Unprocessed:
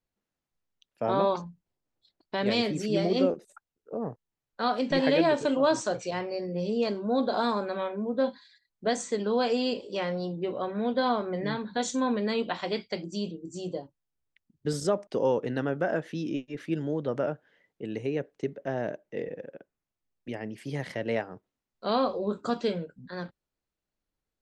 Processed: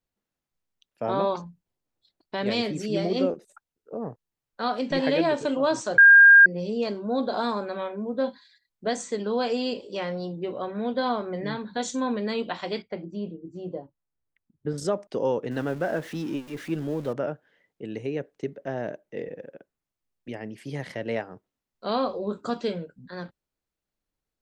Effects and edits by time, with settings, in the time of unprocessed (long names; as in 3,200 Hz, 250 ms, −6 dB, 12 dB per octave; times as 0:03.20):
0:05.98–0:06.46: beep over 1,610 Hz −8.5 dBFS
0:12.82–0:14.78: low-pass filter 1,700 Hz
0:15.51–0:17.13: converter with a step at zero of −41 dBFS